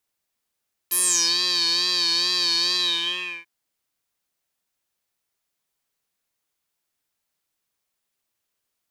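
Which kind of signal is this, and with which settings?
synth patch with vibrato F4, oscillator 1 square, oscillator 2 saw, interval +7 st, oscillator 2 level -16 dB, sub -5 dB, noise -30 dB, filter bandpass, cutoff 2.2 kHz, Q 8.2, filter envelope 2.5 oct, filter decay 0.39 s, attack 13 ms, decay 0.41 s, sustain -8 dB, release 0.70 s, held 1.84 s, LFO 2.3 Hz, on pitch 59 cents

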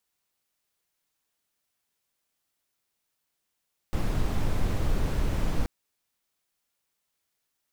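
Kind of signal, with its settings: noise brown, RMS -24.5 dBFS 1.73 s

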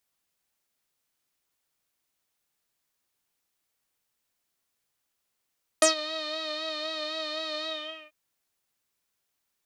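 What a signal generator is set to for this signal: synth patch with vibrato D#5, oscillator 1 saw, sub -14.5 dB, noise -30 dB, filter lowpass, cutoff 2.5 kHz, Q 8.4, filter envelope 2 oct, filter decay 0.09 s, filter sustain 35%, attack 4 ms, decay 0.12 s, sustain -17.5 dB, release 0.46 s, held 1.83 s, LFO 3.9 Hz, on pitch 43 cents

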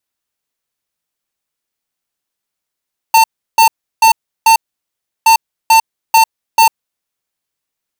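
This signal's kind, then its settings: beep pattern square 899 Hz, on 0.10 s, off 0.34 s, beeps 4, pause 0.70 s, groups 2, -6.5 dBFS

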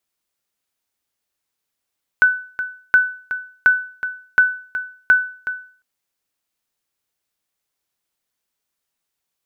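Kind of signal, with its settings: sonar ping 1.5 kHz, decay 0.44 s, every 0.72 s, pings 5, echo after 0.37 s, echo -12 dB -5 dBFS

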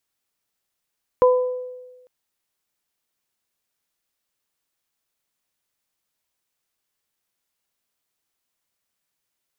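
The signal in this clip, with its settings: additive tone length 0.85 s, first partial 502 Hz, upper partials -6 dB, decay 1.26 s, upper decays 0.60 s, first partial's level -10 dB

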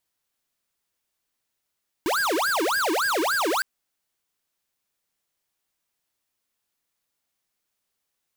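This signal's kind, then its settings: siren wail 309–1640 Hz 3.5 per s square -23.5 dBFS 1.56 s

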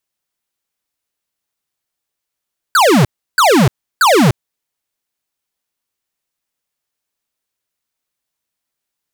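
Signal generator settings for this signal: burst of laser zaps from 1.6 kHz, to 110 Hz, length 0.30 s square, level -9 dB, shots 3, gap 0.33 s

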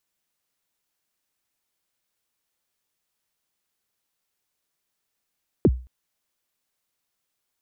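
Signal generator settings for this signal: kick drum length 0.22 s, from 460 Hz, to 62 Hz, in 46 ms, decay 0.35 s, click off, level -9.5 dB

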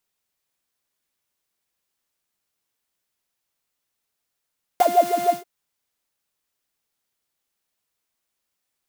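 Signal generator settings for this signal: synth patch with filter wobble F5, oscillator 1 triangle, noise -8 dB, filter highpass, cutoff 230 Hz, Q 7.9, filter envelope 1 oct, attack 1.3 ms, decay 0.07 s, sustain -7 dB, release 0.14 s, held 0.50 s, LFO 6.6 Hz, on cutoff 1.1 oct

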